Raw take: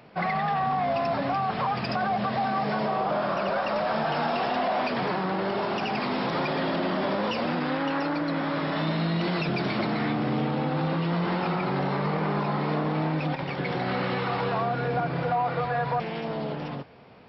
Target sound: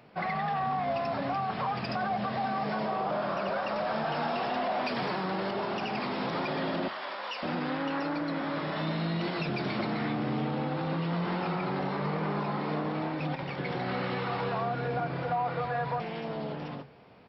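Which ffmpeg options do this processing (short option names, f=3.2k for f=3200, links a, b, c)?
-filter_complex "[0:a]asettb=1/sr,asplit=3[a][b][c];[a]atrim=end=4.864[d];[b]atrim=start=4.86:end=5.51,asetpts=PTS-STARTPTS,afade=t=in:d=0.004:c=qsin,afade=t=out:st=0.646:d=0.004:c=qsin,highshelf=f=4.9k:g=10[e];[c]atrim=start=5.506[f];[d][e]acrossfade=d=0.004:c1=hsin:c2=qsin[g];[g][f]acrossfade=d=0.004:c1=qsin:c2=hsin,asettb=1/sr,asplit=3[h][i][j];[h]atrim=end=6.884[k];[i]atrim=start=6.88:end=7.43,asetpts=PTS-STARTPTS,afade=t=in:d=0.004:c=qsin,afade=t=out:st=0.546:d=0.004:c=qsin,highpass=910[l];[j]atrim=start=7.426[m];[k][l]acrossfade=d=0.004:c1=hsin:c2=qsin[n];[n][m]acrossfade=d=0.004:c1=qsin:c2=hsin,flanger=delay=8.4:depth=2.4:regen=-82:speed=0.21:shape=sinusoidal,asplit=2[o][p];[p]adelay=320,highpass=300,lowpass=3.4k,asoftclip=type=hard:threshold=-29dB,volume=-26dB[q];[o][q]amix=inputs=2:normalize=0"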